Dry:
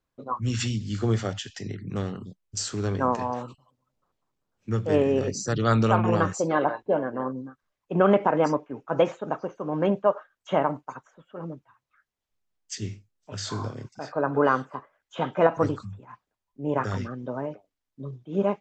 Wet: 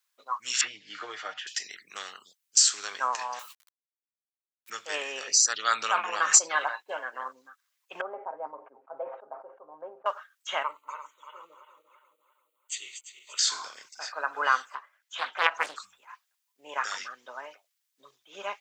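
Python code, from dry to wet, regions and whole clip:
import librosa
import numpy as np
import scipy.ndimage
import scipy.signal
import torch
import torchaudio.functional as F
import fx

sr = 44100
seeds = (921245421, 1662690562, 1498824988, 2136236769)

y = fx.chain(x, sr, fx.lowpass(hz=1400.0, slope=12),
    fx.comb(ms=6.5, depth=0.7),
    fx.band_squash(depth_pct=100), at=(0.61, 1.47))
y = fx.chain(y, sr, fx.delta_hold(step_db=-54.0),
    fx.highpass(hz=1400.0, slope=6), at=(3.39, 4.7))
y = fx.chain(y, sr, fx.high_shelf(hz=4500.0, db=-8.5),
    fx.sustainer(db_per_s=44.0), at=(5.23, 6.49))
y = fx.chain(y, sr, fx.ladder_lowpass(hz=810.0, resonance_pct=35),
    fx.comb(ms=7.5, depth=0.64),
    fx.sustainer(db_per_s=97.0), at=(8.01, 10.06))
y = fx.chain(y, sr, fx.reverse_delay_fb(ms=171, feedback_pct=64, wet_db=-9.0),
    fx.fixed_phaser(hz=1100.0, stages=8), at=(10.63, 13.39))
y = fx.chain(y, sr, fx.high_shelf(hz=4000.0, db=-5.0),
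    fx.doppler_dist(depth_ms=0.83), at=(14.75, 15.76))
y = scipy.signal.sosfilt(scipy.signal.butter(2, 1300.0, 'highpass', fs=sr, output='sos'), y)
y = fx.tilt_eq(y, sr, slope=3.0)
y = F.gain(torch.from_numpy(y), 3.5).numpy()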